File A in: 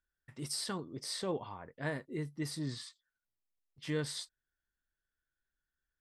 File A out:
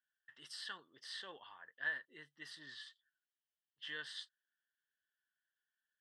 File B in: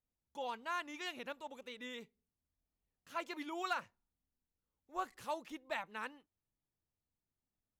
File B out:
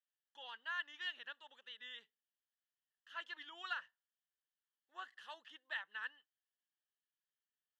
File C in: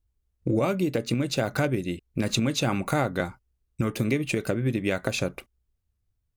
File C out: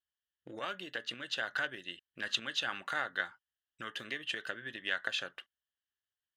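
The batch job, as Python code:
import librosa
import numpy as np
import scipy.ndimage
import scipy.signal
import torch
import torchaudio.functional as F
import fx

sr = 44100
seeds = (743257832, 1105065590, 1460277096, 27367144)

y = fx.cheby_harmonics(x, sr, harmonics=(2,), levels_db=(-18,), full_scale_db=-9.5)
y = fx.double_bandpass(y, sr, hz=2300.0, octaves=0.8)
y = y * 10.0 ** (5.5 / 20.0)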